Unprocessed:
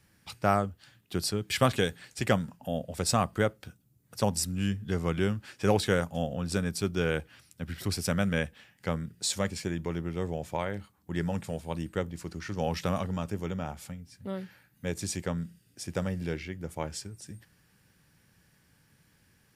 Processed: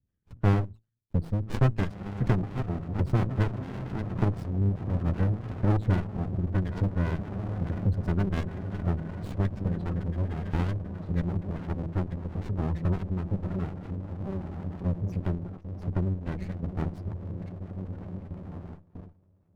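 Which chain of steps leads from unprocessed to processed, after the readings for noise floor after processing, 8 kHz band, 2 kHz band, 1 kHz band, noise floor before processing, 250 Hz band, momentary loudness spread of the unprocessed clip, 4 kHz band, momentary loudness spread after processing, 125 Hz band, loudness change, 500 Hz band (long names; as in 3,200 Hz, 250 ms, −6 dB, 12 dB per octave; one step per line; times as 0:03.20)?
−62 dBFS, below −20 dB, −7.0 dB, −5.0 dB, −66 dBFS, +1.5 dB, 13 LU, below −10 dB, 12 LU, +7.0 dB, +1.0 dB, −5.0 dB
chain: delay that plays each chunk backwards 530 ms, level −9 dB
reverb reduction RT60 1.7 s
RIAA equalisation playback
hum removal 55.12 Hz, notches 5
on a send: feedback delay with all-pass diffusion 1,877 ms, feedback 40%, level −8 dB
on the sum: gate on every frequency bin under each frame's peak −25 dB strong
parametric band 1,900 Hz +13.5 dB 1.8 octaves
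noise gate with hold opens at −28 dBFS
in parallel at 0 dB: downward compressor, threshold −27 dBFS, peak gain reduction 15.5 dB
on the sum: gain on a spectral selection 0:09.76–0:10.76, 660–1,700 Hz +6 dB
notch filter 670 Hz, Q 18
windowed peak hold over 65 samples
level −7.5 dB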